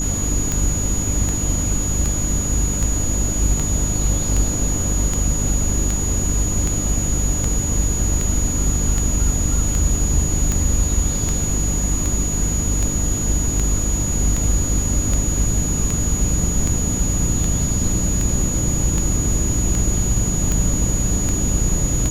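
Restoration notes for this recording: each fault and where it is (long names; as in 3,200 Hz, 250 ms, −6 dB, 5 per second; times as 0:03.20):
mains hum 50 Hz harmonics 6 −24 dBFS
scratch tick 78 rpm −8 dBFS
whistle 6,800 Hz −23 dBFS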